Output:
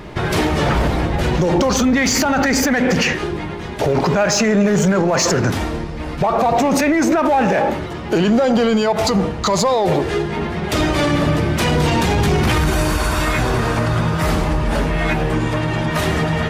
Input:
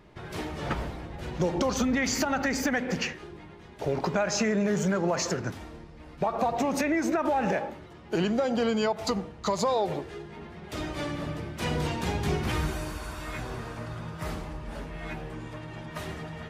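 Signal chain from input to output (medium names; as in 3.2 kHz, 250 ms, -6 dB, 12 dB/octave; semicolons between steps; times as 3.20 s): in parallel at -5 dB: overload inside the chain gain 27.5 dB; on the sum: loudness maximiser +25 dB; trim -8 dB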